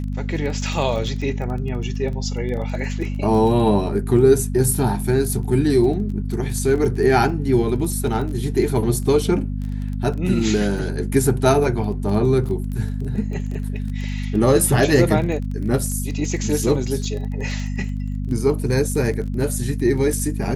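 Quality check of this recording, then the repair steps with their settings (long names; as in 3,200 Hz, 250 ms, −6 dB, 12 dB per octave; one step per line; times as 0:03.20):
surface crackle 21 per second −28 dBFS
mains hum 50 Hz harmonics 5 −25 dBFS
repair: click removal
hum removal 50 Hz, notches 5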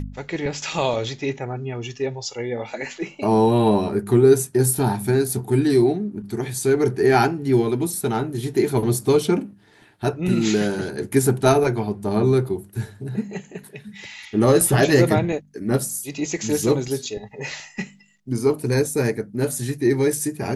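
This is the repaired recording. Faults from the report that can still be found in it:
none of them is left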